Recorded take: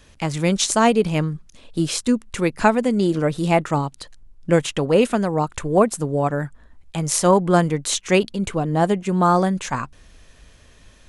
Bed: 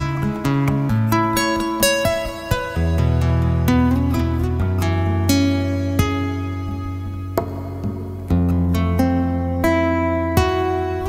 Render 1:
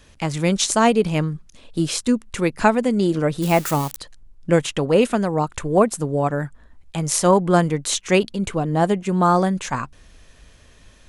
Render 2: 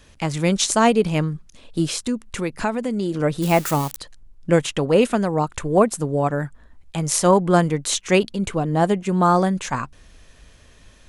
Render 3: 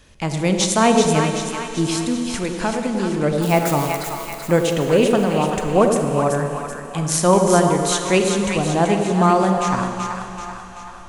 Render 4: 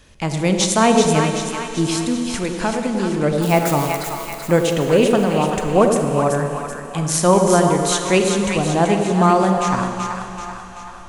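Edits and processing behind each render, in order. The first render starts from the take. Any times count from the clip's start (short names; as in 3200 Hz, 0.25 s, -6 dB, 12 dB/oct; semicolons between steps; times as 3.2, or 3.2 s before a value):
3.42–3.99 switching spikes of -19 dBFS
1.88–3.2 compressor 2:1, threshold -23 dBFS
split-band echo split 800 Hz, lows 94 ms, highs 0.383 s, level -5 dB; Schroeder reverb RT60 3.2 s, combs from 33 ms, DRR 6 dB
gain +1 dB; limiter -2 dBFS, peak gain reduction 2 dB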